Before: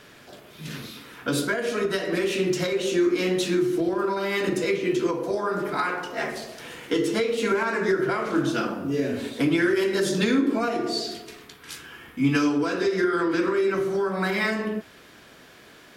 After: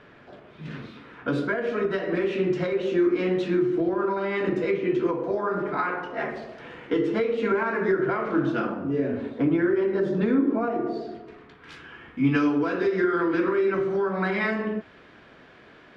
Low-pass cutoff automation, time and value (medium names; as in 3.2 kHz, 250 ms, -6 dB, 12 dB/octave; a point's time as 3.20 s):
8.68 s 2 kHz
9.52 s 1.2 kHz
11.20 s 1.2 kHz
11.76 s 2.5 kHz